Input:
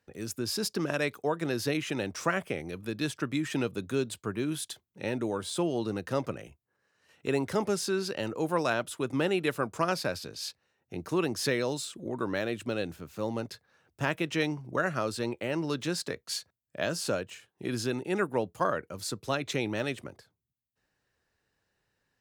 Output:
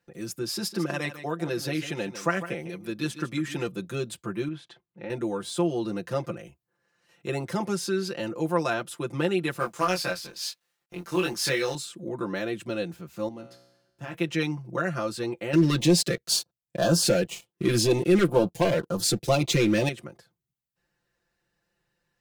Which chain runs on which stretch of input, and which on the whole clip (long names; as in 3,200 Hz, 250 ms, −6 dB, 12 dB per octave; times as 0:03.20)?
0:00.42–0:03.67: low-shelf EQ 68 Hz −10 dB + single-tap delay 151 ms −12.5 dB
0:04.48–0:05.10: low-pass filter 2,300 Hz + low-shelf EQ 63 Hz −11.5 dB + downward compressor 2 to 1, threshold −36 dBFS
0:09.59–0:11.75: mu-law and A-law mismatch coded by A + tilt shelving filter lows −5 dB, about 700 Hz + double-tracking delay 22 ms −3 dB
0:13.28–0:14.14: parametric band 230 Hz +6.5 dB 0.8 octaves + tuned comb filter 62 Hz, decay 1 s, mix 80%
0:15.53–0:19.89: leveller curve on the samples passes 3 + notch on a step sequencer 4 Hz 800–2,200 Hz
whole clip: low-shelf EQ 330 Hz +2.5 dB; comb filter 5.8 ms, depth 98%; level −2.5 dB